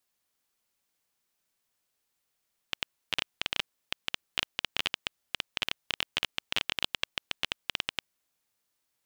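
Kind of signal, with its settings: random clicks 13/s -9.5 dBFS 5.31 s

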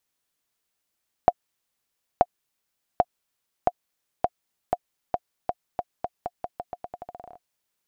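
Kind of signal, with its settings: bouncing ball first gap 0.93 s, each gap 0.85, 713 Hz, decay 45 ms -3.5 dBFS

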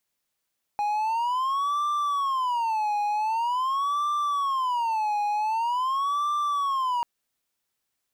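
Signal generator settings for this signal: siren wail 828–1180 Hz 0.45/s triangle -21 dBFS 6.24 s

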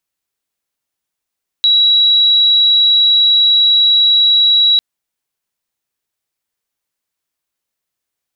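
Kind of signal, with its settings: tone sine 3890 Hz -7 dBFS 3.15 s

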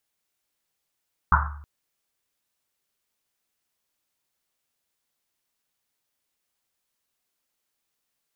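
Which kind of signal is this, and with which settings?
Risset drum length 0.32 s, pitch 73 Hz, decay 0.85 s, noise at 1200 Hz, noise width 640 Hz, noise 50%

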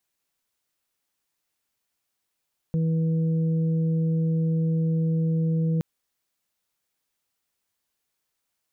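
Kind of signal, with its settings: steady additive tone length 3.07 s, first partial 162 Hz, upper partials -18.5/-14 dB, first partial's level -20.5 dB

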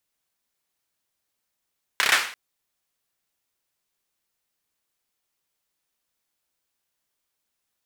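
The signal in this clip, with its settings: hand clap length 0.34 s, bursts 5, apart 30 ms, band 1800 Hz, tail 0.47 s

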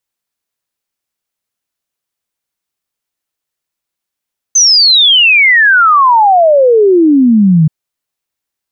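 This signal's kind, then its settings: log sweep 6300 Hz -> 150 Hz 3.13 s -3.5 dBFS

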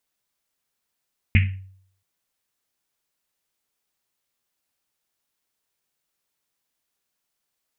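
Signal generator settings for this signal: Risset drum length 0.68 s, pitch 95 Hz, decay 0.63 s, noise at 2300 Hz, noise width 1000 Hz, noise 20%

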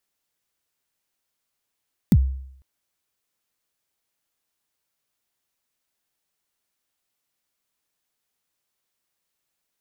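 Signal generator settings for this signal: kick drum length 0.50 s, from 250 Hz, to 66 Hz, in 50 ms, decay 0.69 s, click on, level -8.5 dB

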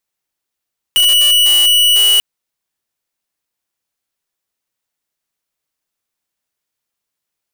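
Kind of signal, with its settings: tone square 2940 Hz -10 dBFS 1.24 s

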